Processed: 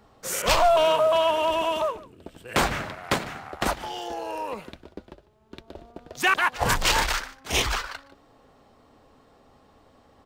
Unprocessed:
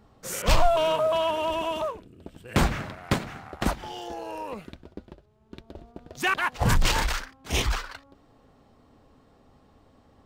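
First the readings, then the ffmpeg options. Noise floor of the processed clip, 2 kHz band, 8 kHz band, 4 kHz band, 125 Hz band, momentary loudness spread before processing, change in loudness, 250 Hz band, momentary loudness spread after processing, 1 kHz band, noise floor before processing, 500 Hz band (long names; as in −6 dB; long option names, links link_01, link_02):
−58 dBFS, +4.0 dB, +4.0 dB, +4.0 dB, −6.0 dB, 23 LU, +3.0 dB, −2.5 dB, 16 LU, +4.0 dB, −60 dBFS, +3.5 dB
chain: -filter_complex "[0:a]acrossover=split=360[link_01][link_02];[link_01]alimiter=limit=-21.5dB:level=0:latency=1[link_03];[link_02]acontrast=69[link_04];[link_03][link_04]amix=inputs=2:normalize=0,aecho=1:1:149:0.1,volume=-2.5dB"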